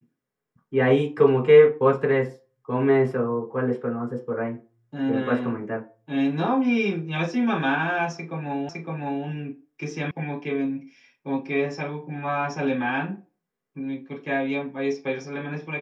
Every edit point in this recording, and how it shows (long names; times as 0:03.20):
0:08.69: the same again, the last 0.56 s
0:10.11: cut off before it has died away